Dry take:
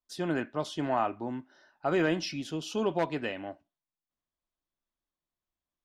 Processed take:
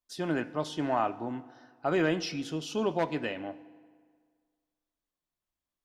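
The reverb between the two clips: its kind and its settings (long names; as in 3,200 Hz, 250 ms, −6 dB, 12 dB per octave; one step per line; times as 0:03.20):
feedback delay network reverb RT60 1.8 s, low-frequency decay 0.95×, high-frequency decay 0.75×, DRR 15.5 dB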